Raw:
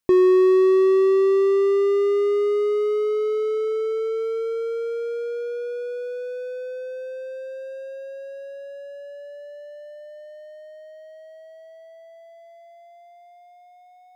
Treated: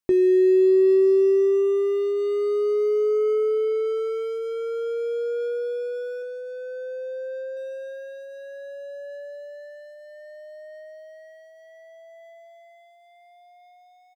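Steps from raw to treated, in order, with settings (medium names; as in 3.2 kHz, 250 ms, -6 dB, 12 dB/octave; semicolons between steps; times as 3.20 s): 6.22–7.57 s: low-pass 1.8 kHz 6 dB/octave; waveshaping leveller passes 1; doubling 21 ms -11 dB; trim -4 dB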